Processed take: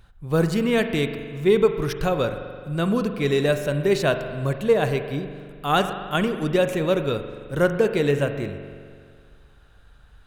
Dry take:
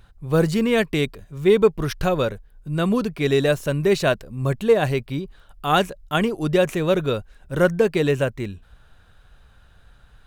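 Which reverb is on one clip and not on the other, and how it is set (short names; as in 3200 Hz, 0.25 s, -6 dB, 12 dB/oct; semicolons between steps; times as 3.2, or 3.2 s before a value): spring tank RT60 2 s, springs 42 ms, chirp 75 ms, DRR 8 dB; gain -2 dB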